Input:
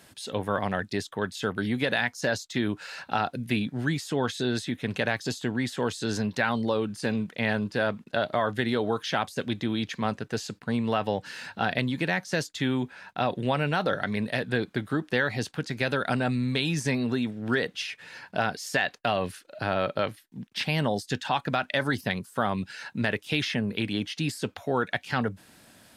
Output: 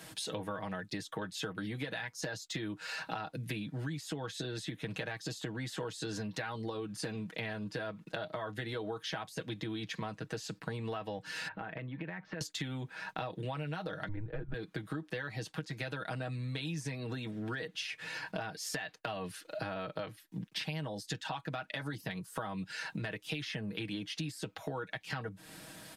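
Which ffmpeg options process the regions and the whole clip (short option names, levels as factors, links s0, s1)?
-filter_complex "[0:a]asettb=1/sr,asplit=3[s0][s1][s2];[s0]atrim=end=11.484[s3];[s1]atrim=start=11.48:end=12.41,asetpts=PTS-STARTPTS,afade=t=in:d=0.004:c=qsin,afade=t=out:st=0.926:d=0.004:c=qsin,lowpass=f=2400:w=0.5412,lowpass=f=2400:w=1.3066,acompressor=threshold=0.00794:ratio=5:attack=3.2:release=140:knee=1:detection=peak[s4];[s2]atrim=start=12.406[s5];[s3][s4]acrossfade=d=0.004:c1=hsin:c2=qsin[s6];[s6][s5]acrossfade=d=0.004:c1=qsin:c2=hsin,asettb=1/sr,asplit=3[s7][s8][s9];[s7]atrim=end=14.084[s10];[s8]atrim=start=14.08:end=14.54,asetpts=PTS-STARTPTS,afade=t=in:d=0.004:c=qsin,afade=t=out:st=0.456:d=0.004:c=qsin,lowpass=1200,lowshelf=f=320:g=4,afreqshift=-110[s11];[s9]atrim=start=14.536[s12];[s10][s11]acrossfade=d=0.004:c1=hsin:c2=qsin[s13];[s13][s12]acrossfade=d=0.004:c1=qsin:c2=hsin,acrossover=split=120[s14][s15];[s15]acompressor=threshold=0.02:ratio=1.5[s16];[s14][s16]amix=inputs=2:normalize=0,aecho=1:1:6.3:0.74,acompressor=threshold=0.0112:ratio=6,volume=1.33"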